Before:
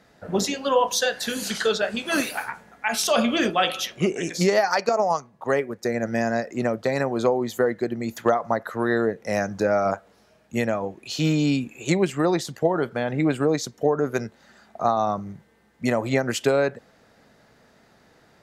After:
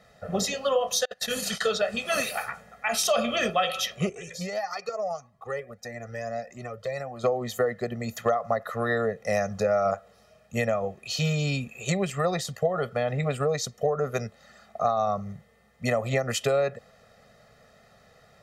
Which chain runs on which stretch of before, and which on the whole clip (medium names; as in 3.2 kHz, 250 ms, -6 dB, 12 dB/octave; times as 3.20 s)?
1.05–1.61 s: compressor with a negative ratio -27 dBFS, ratio -0.5 + gate -30 dBFS, range -25 dB
4.09–7.24 s: compression 1.5:1, threshold -35 dBFS + Shepard-style flanger rising 1.6 Hz
whole clip: comb 1.6 ms, depth 99%; compression 2.5:1, threshold -19 dBFS; trim -3 dB